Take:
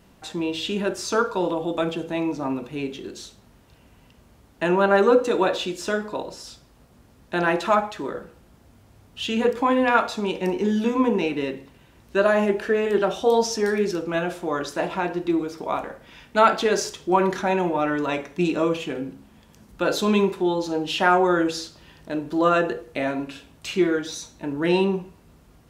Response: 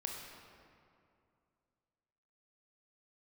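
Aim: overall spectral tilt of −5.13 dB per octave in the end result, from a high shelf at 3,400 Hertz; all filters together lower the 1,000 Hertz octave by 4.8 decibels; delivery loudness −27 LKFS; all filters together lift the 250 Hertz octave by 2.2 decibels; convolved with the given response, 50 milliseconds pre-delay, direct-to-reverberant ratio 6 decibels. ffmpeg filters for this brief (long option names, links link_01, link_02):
-filter_complex "[0:a]equalizer=frequency=250:width_type=o:gain=3.5,equalizer=frequency=1000:width_type=o:gain=-6,highshelf=frequency=3400:gain=-6.5,asplit=2[link_01][link_02];[1:a]atrim=start_sample=2205,adelay=50[link_03];[link_02][link_03]afir=irnorm=-1:irlink=0,volume=-6dB[link_04];[link_01][link_04]amix=inputs=2:normalize=0,volume=-4.5dB"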